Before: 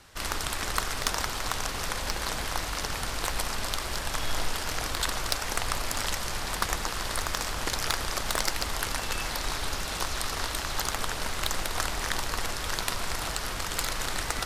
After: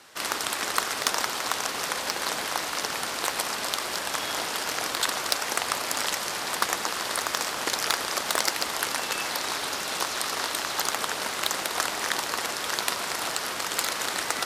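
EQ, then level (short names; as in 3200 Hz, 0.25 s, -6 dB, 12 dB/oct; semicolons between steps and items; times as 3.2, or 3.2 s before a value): HPF 260 Hz 12 dB/oct; +3.5 dB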